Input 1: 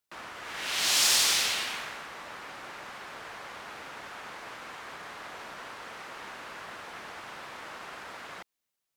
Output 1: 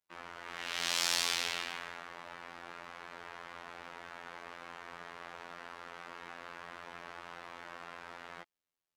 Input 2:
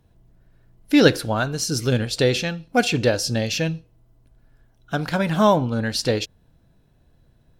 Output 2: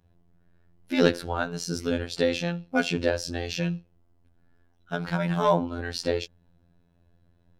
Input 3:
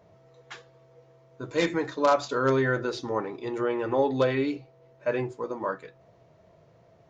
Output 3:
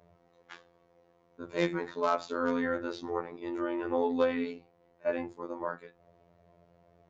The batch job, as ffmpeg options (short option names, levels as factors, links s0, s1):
-af "asoftclip=type=hard:threshold=0.398,aemphasis=mode=reproduction:type=cd,afftfilt=real='hypot(re,im)*cos(PI*b)':imag='0':win_size=2048:overlap=0.75,volume=0.841"